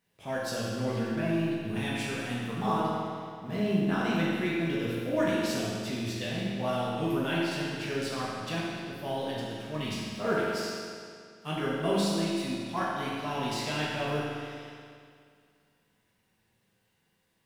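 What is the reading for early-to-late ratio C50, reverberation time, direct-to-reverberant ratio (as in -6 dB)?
-2.5 dB, 2.2 s, -7.0 dB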